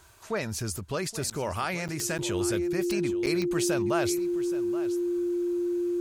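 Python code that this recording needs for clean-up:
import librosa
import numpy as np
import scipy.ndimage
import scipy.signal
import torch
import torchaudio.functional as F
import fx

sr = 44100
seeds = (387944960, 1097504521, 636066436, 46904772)

y = fx.fix_declick_ar(x, sr, threshold=10.0)
y = fx.notch(y, sr, hz=350.0, q=30.0)
y = fx.fix_interpolate(y, sr, at_s=(1.3, 1.88, 2.18, 3.26), length_ms=8.1)
y = fx.fix_echo_inverse(y, sr, delay_ms=824, level_db=-15.0)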